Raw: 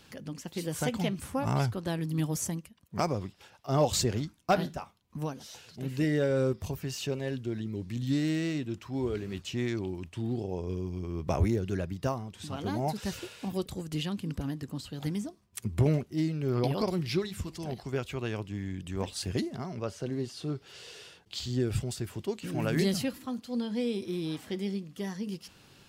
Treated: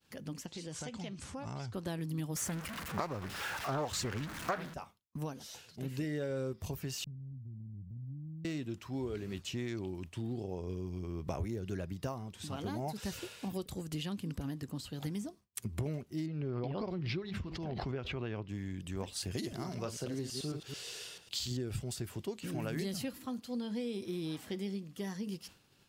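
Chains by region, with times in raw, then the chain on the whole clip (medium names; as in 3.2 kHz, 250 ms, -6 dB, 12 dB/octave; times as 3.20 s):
0.46–1.74 s: low-pass 6.9 kHz 24 dB/octave + treble shelf 5.3 kHz +9.5 dB + compression 2.5:1, threshold -41 dBFS
2.36–4.74 s: jump at every zero crossing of -37.5 dBFS + peaking EQ 1.5 kHz +11.5 dB 1.5 oct + loudspeaker Doppler distortion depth 0.41 ms
7.04–8.45 s: inverse Chebyshev band-stop 730–9400 Hz, stop band 70 dB + compression 2.5:1, threshold -42 dBFS
16.26–18.49 s: distance through air 260 m + swell ahead of each attack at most 35 dB/s
19.31–21.57 s: chunks repeated in reverse 110 ms, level -6 dB + treble shelf 3.7 kHz +8.5 dB
whole clip: expander -49 dBFS; treble shelf 9.3 kHz +4.5 dB; compression 4:1, threshold -32 dBFS; trim -2.5 dB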